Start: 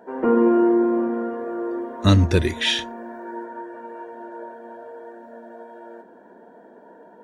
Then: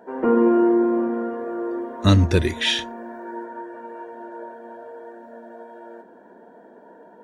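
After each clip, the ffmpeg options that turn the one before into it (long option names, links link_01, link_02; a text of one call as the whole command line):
ffmpeg -i in.wav -af anull out.wav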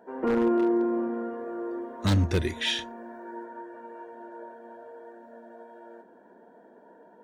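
ffmpeg -i in.wav -af "aeval=exprs='0.299*(abs(mod(val(0)/0.299+3,4)-2)-1)':channel_layout=same,volume=-6.5dB" out.wav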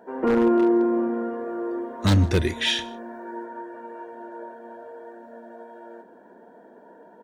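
ffmpeg -i in.wav -af "aecho=1:1:155:0.0631,volume=4.5dB" out.wav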